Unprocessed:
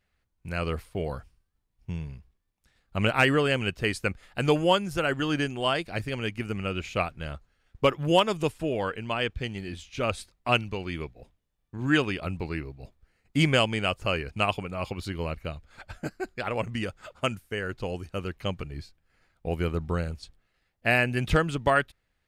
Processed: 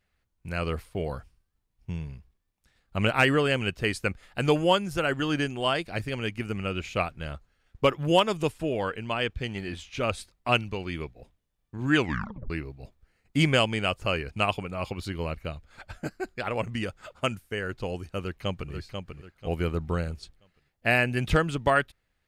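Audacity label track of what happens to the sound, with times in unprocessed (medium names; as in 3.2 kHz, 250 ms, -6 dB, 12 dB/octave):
9.480000	9.980000	peaking EQ 1.1 kHz +6 dB 2.7 oct
11.970000	11.970000	tape stop 0.53 s
18.190000	18.720000	echo throw 490 ms, feedback 35%, level -6 dB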